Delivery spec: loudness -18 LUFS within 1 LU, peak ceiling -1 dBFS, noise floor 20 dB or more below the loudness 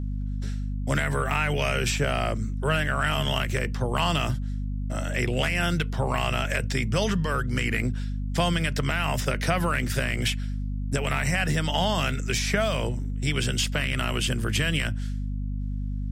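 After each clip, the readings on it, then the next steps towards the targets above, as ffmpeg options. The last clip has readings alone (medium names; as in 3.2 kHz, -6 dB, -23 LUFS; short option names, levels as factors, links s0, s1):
hum 50 Hz; highest harmonic 250 Hz; hum level -27 dBFS; loudness -26.5 LUFS; peak level -10.0 dBFS; loudness target -18.0 LUFS
-> -af "bandreject=f=50:t=h:w=4,bandreject=f=100:t=h:w=4,bandreject=f=150:t=h:w=4,bandreject=f=200:t=h:w=4,bandreject=f=250:t=h:w=4"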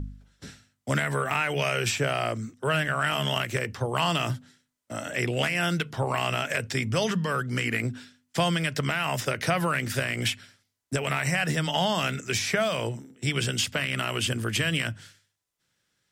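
hum not found; loudness -27.0 LUFS; peak level -11.5 dBFS; loudness target -18.0 LUFS
-> -af "volume=2.82"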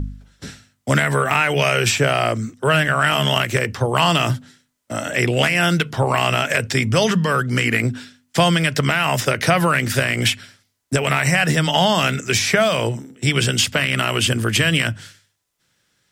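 loudness -18.0 LUFS; peak level -2.5 dBFS; noise floor -69 dBFS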